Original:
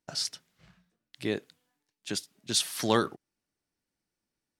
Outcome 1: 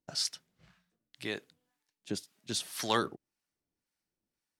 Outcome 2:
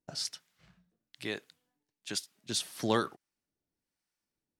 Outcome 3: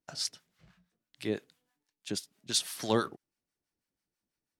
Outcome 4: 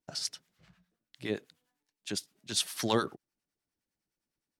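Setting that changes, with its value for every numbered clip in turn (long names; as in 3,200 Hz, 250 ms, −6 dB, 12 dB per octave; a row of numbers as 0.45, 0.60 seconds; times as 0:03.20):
two-band tremolo in antiphase, speed: 1.9, 1.1, 6.1, 9.8 Hertz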